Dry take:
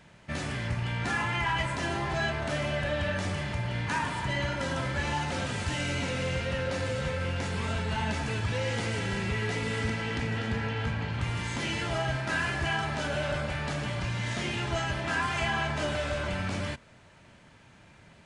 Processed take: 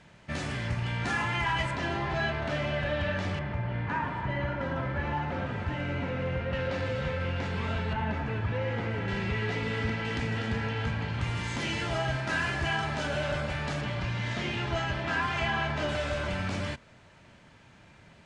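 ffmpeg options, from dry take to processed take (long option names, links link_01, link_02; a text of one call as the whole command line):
ffmpeg -i in.wav -af "asetnsamples=nb_out_samples=441:pad=0,asendcmd='1.71 lowpass f 4200;3.39 lowpass f 1800;6.53 lowpass f 3600;7.93 lowpass f 2000;9.08 lowpass f 4000;10.05 lowpass f 7900;13.81 lowpass f 4700;15.89 lowpass f 7900',lowpass=8600" out.wav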